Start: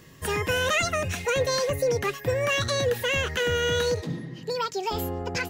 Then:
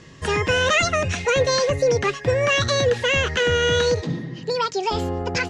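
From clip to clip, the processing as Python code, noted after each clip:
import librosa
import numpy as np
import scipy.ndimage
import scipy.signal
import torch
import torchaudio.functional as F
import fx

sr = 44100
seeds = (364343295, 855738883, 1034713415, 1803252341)

y = scipy.signal.sosfilt(scipy.signal.butter(4, 7100.0, 'lowpass', fs=sr, output='sos'), x)
y = F.gain(torch.from_numpy(y), 5.5).numpy()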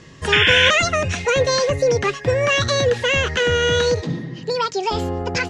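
y = fx.spec_paint(x, sr, seeds[0], shape='noise', start_s=0.32, length_s=0.39, low_hz=1400.0, high_hz=3600.0, level_db=-17.0)
y = F.gain(torch.from_numpy(y), 1.5).numpy()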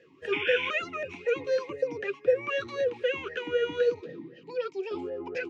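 y = fx.vowel_sweep(x, sr, vowels='e-u', hz=3.9)
y = F.gain(torch.from_numpy(y), -1.5).numpy()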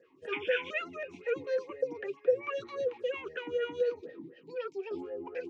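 y = fx.stagger_phaser(x, sr, hz=4.2)
y = F.gain(torch.from_numpy(y), -2.5).numpy()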